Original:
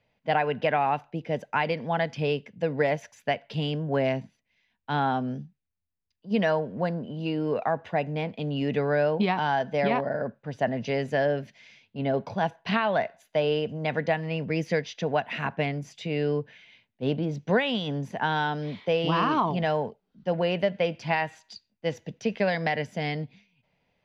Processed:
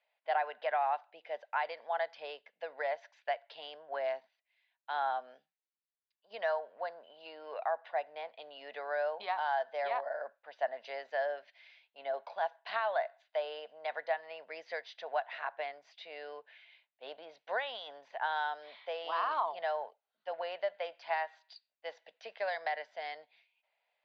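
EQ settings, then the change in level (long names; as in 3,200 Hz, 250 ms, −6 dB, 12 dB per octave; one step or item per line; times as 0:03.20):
Chebyshev band-pass filter 640–4,300 Hz, order 3
dynamic equaliser 2,600 Hz, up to −8 dB, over −49 dBFS, Q 2
−5.5 dB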